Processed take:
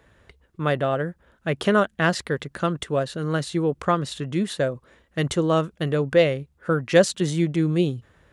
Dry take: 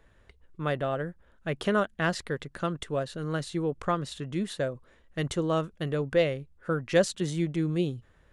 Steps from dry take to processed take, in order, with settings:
high-pass filter 59 Hz
level +6.5 dB

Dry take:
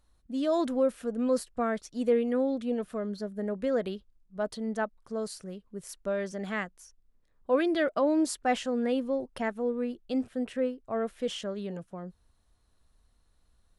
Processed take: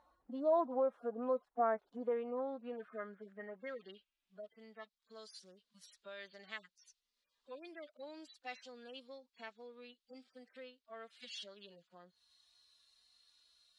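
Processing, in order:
harmonic-percussive split with one part muted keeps harmonic
downward compressor 2 to 1, threshold −52 dBFS, peak gain reduction 17 dB
band-pass filter sweep 860 Hz → 4,100 Hz, 0:01.86–0:04.85
level +17 dB

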